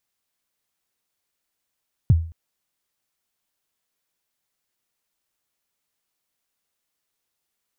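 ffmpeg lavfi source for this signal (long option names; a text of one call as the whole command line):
ffmpeg -f lavfi -i "aevalsrc='0.398*pow(10,-3*t/0.42)*sin(2*PI*(150*0.03/log(82/150)*(exp(log(82/150)*min(t,0.03)/0.03)-1)+82*max(t-0.03,0)))':duration=0.22:sample_rate=44100" out.wav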